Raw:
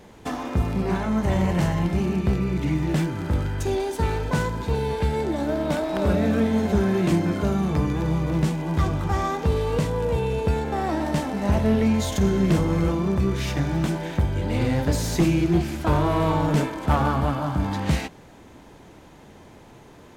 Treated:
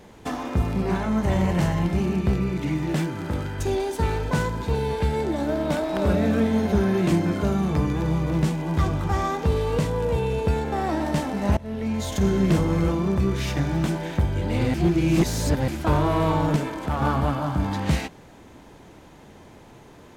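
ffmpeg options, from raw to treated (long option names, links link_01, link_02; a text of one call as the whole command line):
ffmpeg -i in.wav -filter_complex "[0:a]asettb=1/sr,asplit=3[link_01][link_02][link_03];[link_01]atrim=end=2.504[link_04];[link_02]atrim=start=2.5:end=3.59,asetpts=PTS-STARTPTS,afade=type=in:duration=0.004:curve=qsin,afade=type=out:start_time=1.086:duration=0.004:curve=qsin,highpass=frequency=130:poles=1[link_05];[link_03]atrim=start=3.586[link_06];[link_04][link_05]acrossfade=duration=0.004:curve1=hsin:curve2=qsin[link_07];[link_07][link_06]acrossfade=duration=0.004:curve1=qsin:curve2=hsin,asettb=1/sr,asplit=3[link_08][link_09][link_10];[link_08]atrim=end=6.574[link_11];[link_09]atrim=start=6.57:end=6.98,asetpts=PTS-STARTPTS,afade=type=in:duration=0.004:curve=qsin,afade=type=out:start_time=0.406:duration=0.004:curve=qsin,bandreject=frequency=7600:width=5.7[link_12];[link_10]atrim=start=6.976[link_13];[link_11][link_12]acrossfade=duration=0.004:curve1=hsin:curve2=qsin[link_14];[link_14][link_13]acrossfade=duration=0.004:curve1=qsin:curve2=hsin,asettb=1/sr,asplit=3[link_15][link_16][link_17];[link_15]atrim=end=16.564[link_18];[link_16]atrim=start=16.56:end=17.02,asetpts=PTS-STARTPTS,afade=type=in:duration=0.004:curve=qsin,afade=type=out:start_time=0.456:duration=0.004:curve=qsin,acompressor=threshold=-22dB:ratio=4:attack=3.2:release=140:knee=1:detection=peak[link_19];[link_17]atrim=start=17.016[link_20];[link_18][link_19]acrossfade=duration=0.004:curve1=hsin:curve2=qsin[link_21];[link_21][link_20]acrossfade=duration=0.004:curve1=qsin:curve2=hsin,asplit=4[link_22][link_23][link_24][link_25];[link_22]atrim=end=11.57,asetpts=PTS-STARTPTS,afade=type=out:start_time=11.566:duration=0.004:curve=hsin:silence=0.0841395[link_26];[link_23]atrim=start=11.57:end=14.742,asetpts=PTS-STARTPTS,afade=type=in:duration=0.72:silence=0.0841395[link_27];[link_24]atrim=start=14.738:end=15.682,asetpts=PTS-STARTPTS,areverse[link_28];[link_25]atrim=start=15.678[link_29];[link_26][link_27]concat=n=2:v=0:a=1[link_30];[link_30][link_28]acrossfade=duration=0.004:curve1=hsin:curve2=hsin[link_31];[link_31][link_29]acrossfade=duration=0.004:curve1=hsin:curve2=hsin" out.wav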